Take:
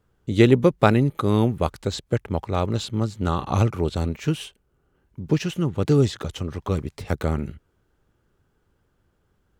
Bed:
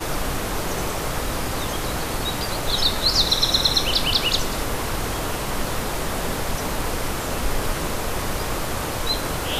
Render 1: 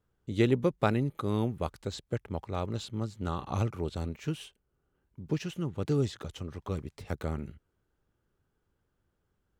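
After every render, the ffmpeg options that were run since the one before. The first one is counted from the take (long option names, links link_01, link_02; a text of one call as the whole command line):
ffmpeg -i in.wav -af "volume=-10dB" out.wav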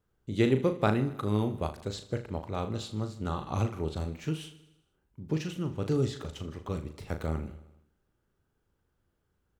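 ffmpeg -i in.wav -filter_complex "[0:a]asplit=2[link_01][link_02];[link_02]adelay=38,volume=-8dB[link_03];[link_01][link_03]amix=inputs=2:normalize=0,aecho=1:1:78|156|234|312|390|468:0.158|0.0935|0.0552|0.0326|0.0192|0.0113" out.wav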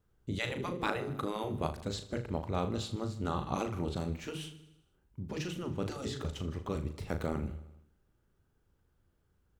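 ffmpeg -i in.wav -af "afftfilt=real='re*lt(hypot(re,im),0.178)':imag='im*lt(hypot(re,im),0.178)':win_size=1024:overlap=0.75,lowshelf=frequency=150:gain=5.5" out.wav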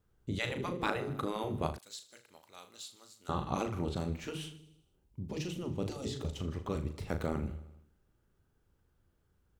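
ffmpeg -i in.wav -filter_complex "[0:a]asettb=1/sr,asplit=3[link_01][link_02][link_03];[link_01]atrim=end=1.784[link_04];[link_02]atrim=start=1.78:end=3.29,asetpts=PTS-STARTPTS,afade=type=in:duration=0.004:curve=qsin,afade=type=out:start_time=1.506:duration=0.004:curve=qsin,aderivative[link_05];[link_03]atrim=start=3.286[link_06];[link_04][link_05]acrossfade=duration=0.004:curve1=hsin:curve2=qsin[link_07];[link_07][link_06]acrossfade=duration=0.004:curve1=qsin:curve2=hsin,asettb=1/sr,asplit=3[link_08][link_09][link_10];[link_08]atrim=end=4.584[link_11];[link_09]atrim=start=4.58:end=6.39,asetpts=PTS-STARTPTS,afade=type=in:duration=0.004:curve=qsin,afade=type=out:start_time=1.806:duration=0.004:curve=qsin,equalizer=frequency=1500:width_type=o:width=0.85:gain=-9.5[link_12];[link_10]atrim=start=6.386[link_13];[link_11][link_12]acrossfade=duration=0.004:curve1=hsin:curve2=qsin[link_14];[link_14][link_13]acrossfade=duration=0.004:curve1=qsin:curve2=hsin" out.wav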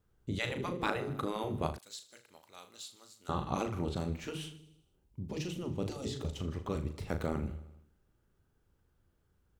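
ffmpeg -i in.wav -af anull out.wav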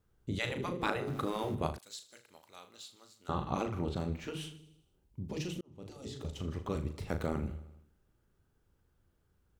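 ffmpeg -i in.wav -filter_complex "[0:a]asettb=1/sr,asplit=3[link_01][link_02][link_03];[link_01]atrim=end=1.074[link_04];[link_02]atrim=start=1.07:end=1.55,asetpts=PTS-STARTPTS,afade=type=in:duration=0.004:curve=qsin,afade=type=out:start_time=0.476:duration=0.004:curve=qsin,aeval=exprs='val(0)+0.5*0.00447*sgn(val(0))':channel_layout=same[link_05];[link_03]atrim=start=1.546[link_06];[link_04][link_05]acrossfade=duration=0.004:curve1=hsin:curve2=qsin[link_07];[link_07][link_06]acrossfade=duration=0.004:curve1=qsin:curve2=hsin,asettb=1/sr,asplit=3[link_08][link_09][link_10];[link_08]atrim=end=2.584[link_11];[link_09]atrim=start=2.58:end=4.37,asetpts=PTS-STARTPTS,afade=type=in:duration=0.004:curve=qsin,afade=type=out:start_time=1.786:duration=0.004:curve=qsin,equalizer=frequency=9900:width=0.53:gain=-6[link_12];[link_10]atrim=start=4.366[link_13];[link_11][link_12]acrossfade=duration=0.004:curve1=hsin:curve2=qsin[link_14];[link_14][link_13]acrossfade=duration=0.004:curve1=qsin:curve2=hsin,asplit=2[link_15][link_16];[link_15]atrim=end=5.61,asetpts=PTS-STARTPTS,afade=type=out:start_time=5.606:duration=0.004:curve=hsin[link_17];[link_16]atrim=start=5.61,asetpts=PTS-STARTPTS,afade=type=in:duration=0.93[link_18];[link_17][link_18]concat=n=2:v=0:a=1" out.wav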